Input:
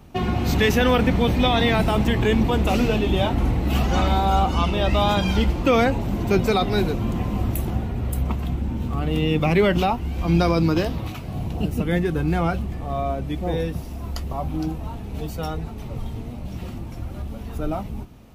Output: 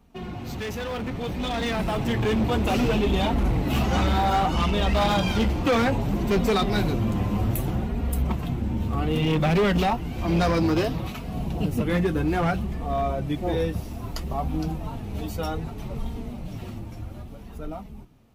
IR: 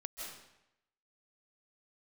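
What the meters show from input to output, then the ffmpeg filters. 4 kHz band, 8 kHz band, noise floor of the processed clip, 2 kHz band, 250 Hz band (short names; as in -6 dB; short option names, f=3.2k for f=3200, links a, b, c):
-3.5 dB, -1.5 dB, -39 dBFS, -3.5 dB, -2.5 dB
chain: -af "flanger=delay=4.2:depth=5.8:regen=-27:speed=0.62:shape=sinusoidal,volume=21dB,asoftclip=hard,volume=-21dB,dynaudnorm=f=350:g=11:m=11dB,volume=-7.5dB"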